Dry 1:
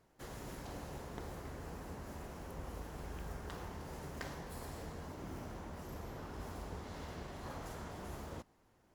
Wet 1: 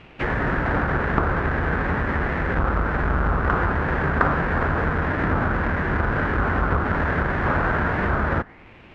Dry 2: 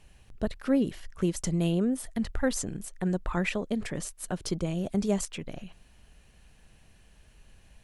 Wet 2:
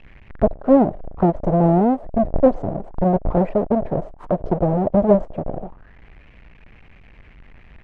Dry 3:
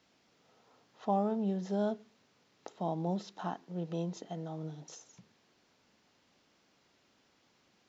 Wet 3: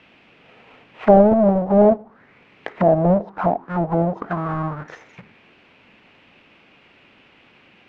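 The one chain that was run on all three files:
square wave that keeps the level; touch-sensitive low-pass 640–2700 Hz down, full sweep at -29.5 dBFS; peak normalisation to -2 dBFS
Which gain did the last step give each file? +18.0 dB, +5.0 dB, +10.5 dB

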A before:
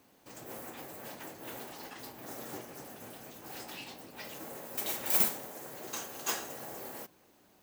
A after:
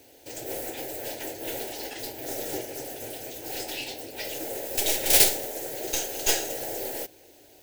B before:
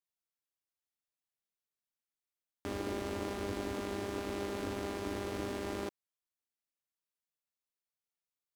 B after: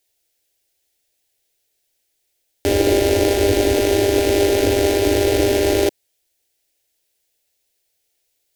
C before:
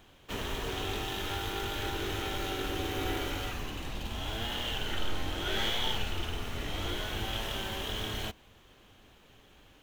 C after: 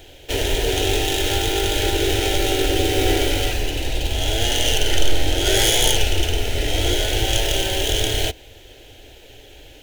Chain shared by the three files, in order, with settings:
tracing distortion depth 0.16 ms; static phaser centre 470 Hz, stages 4; peak normalisation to -1.5 dBFS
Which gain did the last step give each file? +13.0 dB, +24.0 dB, +17.0 dB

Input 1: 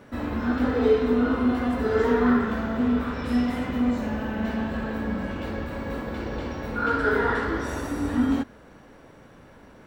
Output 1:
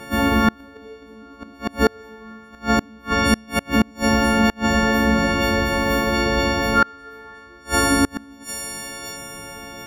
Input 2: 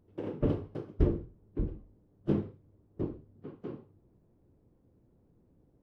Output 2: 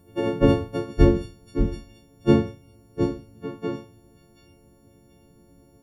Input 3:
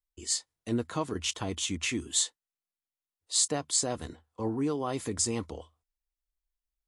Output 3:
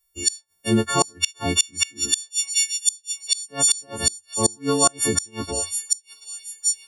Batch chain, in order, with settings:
partials quantised in pitch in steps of 4 st; feedback echo behind a high-pass 732 ms, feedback 35%, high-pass 5 kHz, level -4 dB; inverted gate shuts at -15 dBFS, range -31 dB; peak normalisation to -3 dBFS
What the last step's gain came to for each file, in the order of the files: +10.5 dB, +12.0 dB, +10.5 dB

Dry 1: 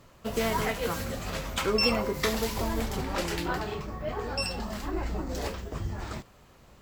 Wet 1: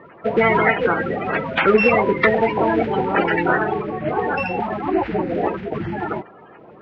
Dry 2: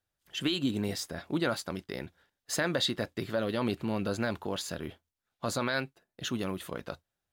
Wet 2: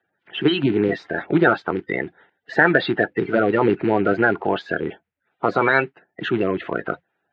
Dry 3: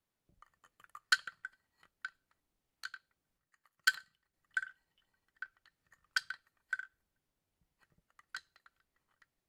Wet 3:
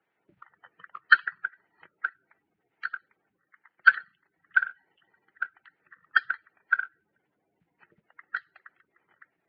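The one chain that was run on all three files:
coarse spectral quantiser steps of 30 dB; cabinet simulation 230–2300 Hz, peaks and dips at 250 Hz -8 dB, 570 Hz -7 dB, 1.1 kHz -9 dB; peak normalisation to -1.5 dBFS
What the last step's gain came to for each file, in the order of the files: +17.5 dB, +18.5 dB, +16.0 dB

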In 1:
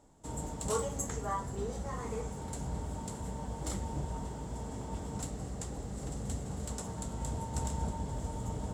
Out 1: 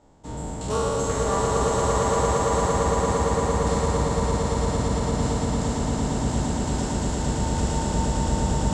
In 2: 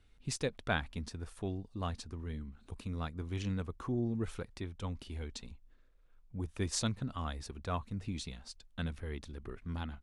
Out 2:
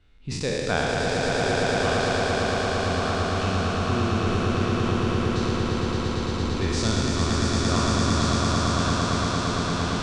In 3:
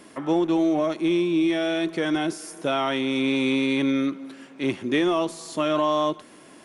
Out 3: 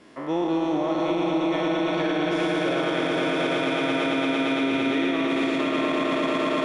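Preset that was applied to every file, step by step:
spectral sustain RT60 2.75 s; low-pass 5.3 kHz 12 dB/octave; on a send: echo with a slow build-up 114 ms, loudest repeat 8, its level -5 dB; on the sum: peak limiter -10.5 dBFS; normalise loudness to -24 LUFS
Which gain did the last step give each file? +4.0 dB, +4.0 dB, -5.0 dB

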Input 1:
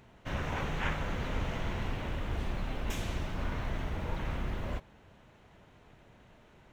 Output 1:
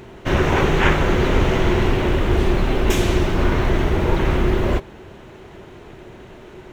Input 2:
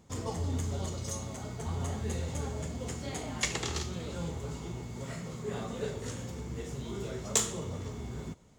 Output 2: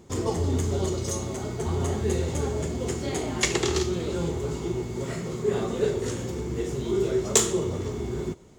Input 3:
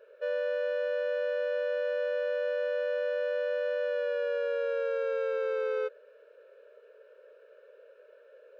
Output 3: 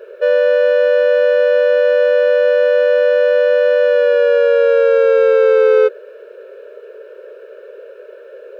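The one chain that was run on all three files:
peaking EQ 370 Hz +13 dB 0.36 oct; peak normalisation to -3 dBFS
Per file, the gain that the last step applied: +16.0 dB, +6.5 dB, +17.0 dB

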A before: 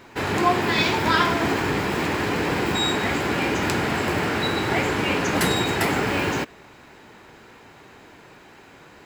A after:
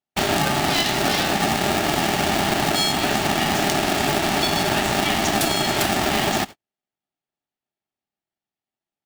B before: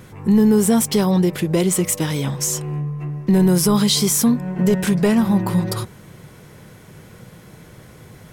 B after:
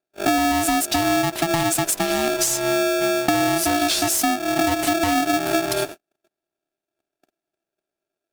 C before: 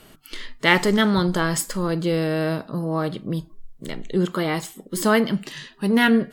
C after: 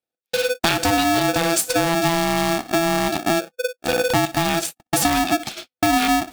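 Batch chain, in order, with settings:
gate -34 dBFS, range -52 dB; high-order bell 920 Hz -11.5 dB 2.4 oct; compression 12:1, threshold -27 dBFS; polarity switched at an audio rate 500 Hz; normalise loudness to -20 LUFS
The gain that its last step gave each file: +10.0 dB, +9.5 dB, +11.5 dB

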